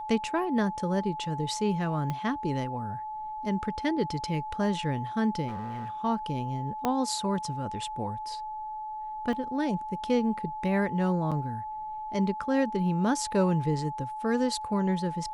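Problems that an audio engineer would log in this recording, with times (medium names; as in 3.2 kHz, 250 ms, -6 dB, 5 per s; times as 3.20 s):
whine 860 Hz -34 dBFS
2.10 s: pop -19 dBFS
5.47–5.90 s: clipped -31.5 dBFS
6.85 s: pop -13 dBFS
9.33 s: dropout 2.4 ms
11.31–11.32 s: dropout 6.5 ms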